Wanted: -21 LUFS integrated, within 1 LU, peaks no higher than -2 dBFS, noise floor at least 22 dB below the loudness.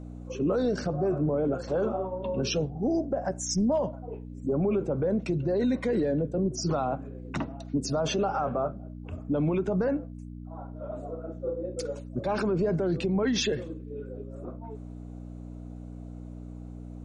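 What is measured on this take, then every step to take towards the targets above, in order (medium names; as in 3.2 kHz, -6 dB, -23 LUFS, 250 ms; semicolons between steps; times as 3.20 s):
hum 60 Hz; highest harmonic 300 Hz; hum level -38 dBFS; loudness -29.0 LUFS; peak level -17.5 dBFS; loudness target -21.0 LUFS
-> de-hum 60 Hz, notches 5; trim +8 dB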